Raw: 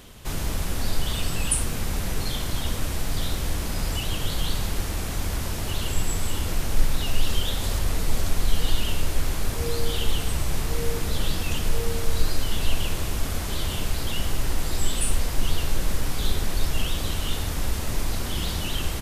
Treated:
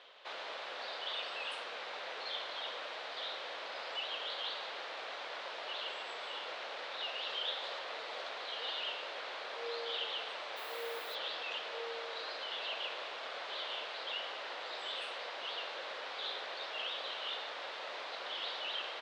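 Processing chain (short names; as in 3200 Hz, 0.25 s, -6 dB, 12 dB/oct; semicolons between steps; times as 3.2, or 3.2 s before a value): Chebyshev band-pass 530–3900 Hz, order 3; 10.56–11.14 added noise violet -50 dBFS; gain -5 dB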